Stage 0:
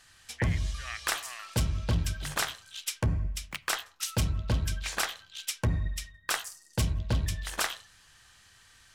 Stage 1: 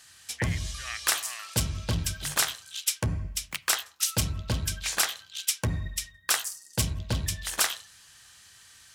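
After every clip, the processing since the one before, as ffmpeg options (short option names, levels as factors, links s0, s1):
-af "highpass=61,highshelf=f=3700:g=9.5"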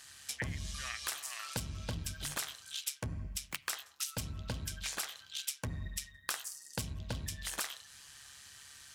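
-af "acompressor=threshold=0.0158:ratio=5,tremolo=f=140:d=0.462,volume=1.19"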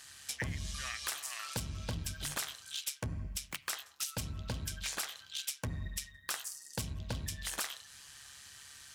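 -af "volume=29.9,asoftclip=hard,volume=0.0335,volume=1.12"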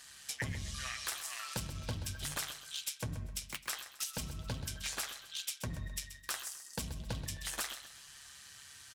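-af "flanger=delay=4:depth=5.2:regen=-48:speed=0.73:shape=triangular,aecho=1:1:130|260|390|520:0.251|0.0879|0.0308|0.0108,volume=1.41"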